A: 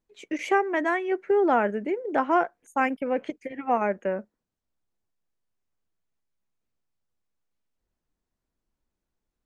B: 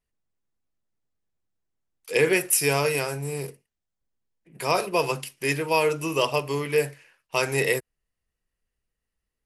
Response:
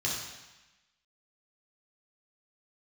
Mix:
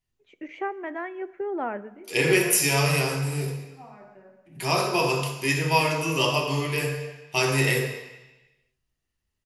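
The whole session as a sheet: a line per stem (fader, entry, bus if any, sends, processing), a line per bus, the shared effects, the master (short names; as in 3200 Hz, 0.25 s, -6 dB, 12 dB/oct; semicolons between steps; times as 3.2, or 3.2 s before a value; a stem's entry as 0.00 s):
-8.0 dB, 0.10 s, send -21.5 dB, LPF 2600 Hz 12 dB/oct; auto duck -17 dB, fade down 0.25 s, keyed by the second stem
-3.5 dB, 0.00 s, send -3.5 dB, dry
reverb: on, RT60 1.0 s, pre-delay 3 ms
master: dry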